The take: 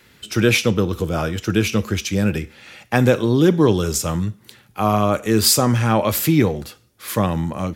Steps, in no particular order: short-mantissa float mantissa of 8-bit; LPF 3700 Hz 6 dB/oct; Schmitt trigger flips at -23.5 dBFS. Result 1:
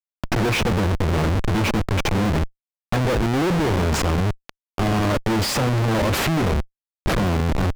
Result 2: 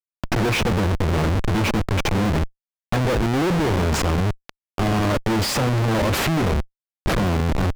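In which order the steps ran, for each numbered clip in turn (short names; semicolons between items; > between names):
Schmitt trigger > short-mantissa float > LPF; Schmitt trigger > LPF > short-mantissa float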